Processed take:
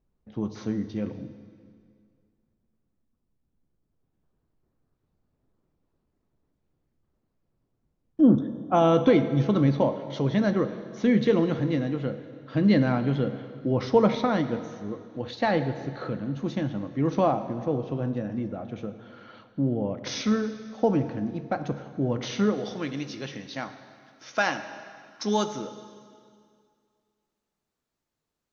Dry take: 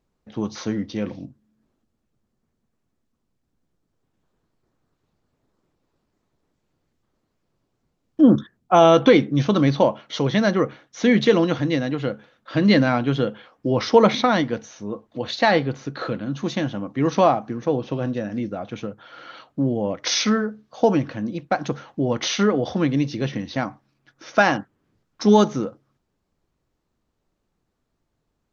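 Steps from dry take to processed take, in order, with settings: tilt EQ -2 dB/octave, from 22.53 s +2 dB/octave; plate-style reverb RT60 2.2 s, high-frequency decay 0.95×, DRR 9.5 dB; trim -8 dB

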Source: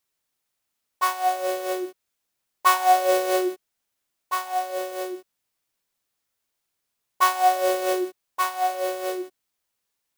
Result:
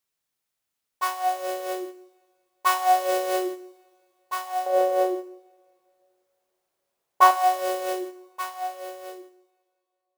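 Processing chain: fade out at the end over 2.79 s; 4.66–7.31 s: peaking EQ 600 Hz +13.5 dB 2 oct; two-slope reverb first 0.72 s, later 2.8 s, from -21 dB, DRR 11 dB; trim -3.5 dB

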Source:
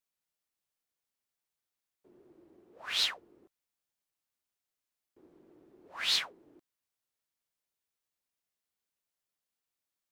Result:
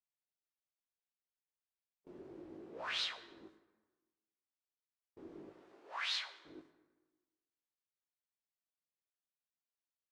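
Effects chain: low-pass 5.8 kHz 12 dB/octave; gate with hold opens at -55 dBFS; 5.49–6.45 s: high-pass 760 Hz 12 dB/octave; compression 2.5:1, threshold -53 dBFS, peak gain reduction 18 dB; chorus 0.33 Hz, delay 17 ms, depth 7.7 ms; plate-style reverb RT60 1.3 s, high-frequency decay 0.6×, DRR 10 dB; trim +11.5 dB

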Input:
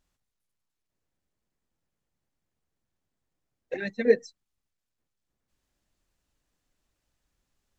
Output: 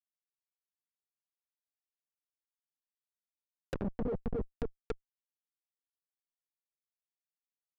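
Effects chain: feedback delay 267 ms, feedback 52%, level -5.5 dB; Schmitt trigger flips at -27 dBFS; low-pass that closes with the level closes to 610 Hz, closed at -36 dBFS; trim +4.5 dB

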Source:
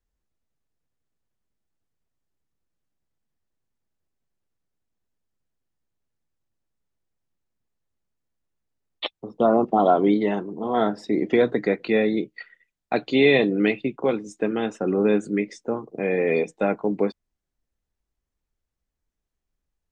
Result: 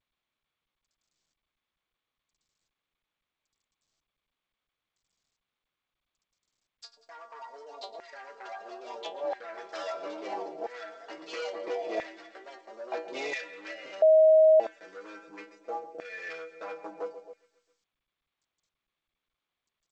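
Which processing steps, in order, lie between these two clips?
local Wiener filter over 41 samples; inharmonic resonator 160 Hz, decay 0.27 s, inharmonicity 0.002; feedback delay 133 ms, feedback 58%, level -16.5 dB; compression 6:1, threshold -33 dBFS, peak gain reduction 12.5 dB; sine folder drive 5 dB, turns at -24.5 dBFS; ever faster or slower copies 220 ms, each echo +3 st, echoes 2, each echo -6 dB; high-order bell 1.8 kHz -12 dB 2.4 oct; LFO high-pass saw down 0.75 Hz 750–1900 Hz; 9.05–9.62 s: treble shelf 5.6 kHz -7 dB; 14.02–14.60 s: bleep 631 Hz -19.5 dBFS; trim +4.5 dB; G.722 64 kbps 16 kHz

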